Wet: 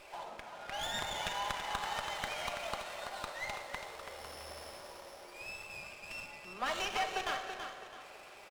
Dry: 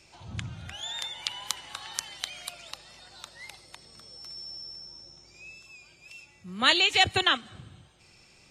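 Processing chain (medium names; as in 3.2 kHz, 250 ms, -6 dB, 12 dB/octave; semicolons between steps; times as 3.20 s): CVSD coder 64 kbps; treble shelf 2.5 kHz -12 dB; compression 6:1, threshold -44 dBFS, peak gain reduction 20.5 dB; ladder high-pass 450 Hz, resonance 30%; feedback delay 331 ms, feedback 34%, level -7.5 dB; simulated room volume 1900 m³, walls mixed, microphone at 1.3 m; sliding maximum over 5 samples; trim +15.5 dB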